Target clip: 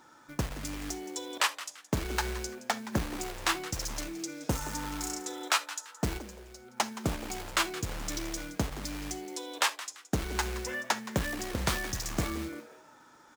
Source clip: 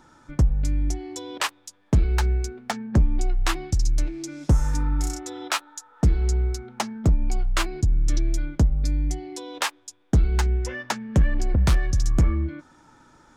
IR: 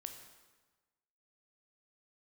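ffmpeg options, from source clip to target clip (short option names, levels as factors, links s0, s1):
-filter_complex "[0:a]asettb=1/sr,asplit=3[s0][s1][s2];[s0]atrim=end=6.184[s3];[s1]atrim=start=6.18:end=6.77,asetpts=PTS-STARTPTS,afade=t=in:d=0.004:c=qsin,afade=t=out:st=0.586:d=0.004:c=qsin,acompressor=threshold=0.0158:ratio=5[s4];[s2]atrim=start=6.766[s5];[s3][s4]acrossfade=d=0.004:c1=hsin:c2=qsin[s6];[s6][s5]acrossfade=d=0.004:c1=qsin:c2=hsin,acrusher=bits=5:mode=log:mix=0:aa=0.000001,highpass=f=430:p=1,asplit=4[s7][s8][s9][s10];[s8]adelay=170,afreqshift=150,volume=0.178[s11];[s9]adelay=340,afreqshift=300,volume=0.055[s12];[s10]adelay=510,afreqshift=450,volume=0.0172[s13];[s7][s11][s12][s13]amix=inputs=4:normalize=0,asplit=2[s14][s15];[1:a]atrim=start_sample=2205,atrim=end_sample=3528,asetrate=42777,aresample=44100[s16];[s15][s16]afir=irnorm=-1:irlink=0,volume=1.5[s17];[s14][s17]amix=inputs=2:normalize=0,volume=0.473"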